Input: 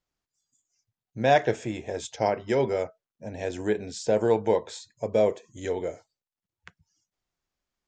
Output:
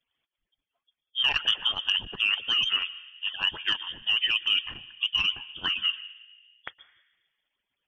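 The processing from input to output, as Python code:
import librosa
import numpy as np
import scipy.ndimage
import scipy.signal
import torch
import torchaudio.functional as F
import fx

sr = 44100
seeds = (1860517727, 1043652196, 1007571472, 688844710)

p1 = fx.hpss_only(x, sr, part='percussive')
p2 = fx.dynamic_eq(p1, sr, hz=1200.0, q=2.1, threshold_db=-44.0, ratio=4.0, max_db=-5)
p3 = fx.over_compress(p2, sr, threshold_db=-32.0, ratio=-0.5)
p4 = p2 + (p3 * 10.0 ** (2.0 / 20.0))
p5 = fx.rev_plate(p4, sr, seeds[0], rt60_s=1.5, hf_ratio=0.25, predelay_ms=105, drr_db=17.0)
p6 = fx.freq_invert(p5, sr, carrier_hz=3400)
y = fx.transformer_sat(p6, sr, knee_hz=940.0)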